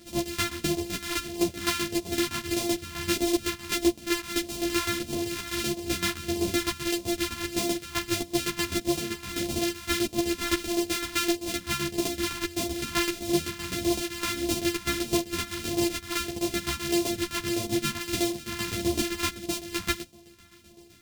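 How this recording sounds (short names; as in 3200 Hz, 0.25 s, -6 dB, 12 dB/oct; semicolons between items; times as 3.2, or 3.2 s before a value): a buzz of ramps at a fixed pitch in blocks of 128 samples; phasing stages 2, 1.6 Hz, lowest notch 520–1400 Hz; tremolo saw down 7.8 Hz, depth 75%; a shimmering, thickened sound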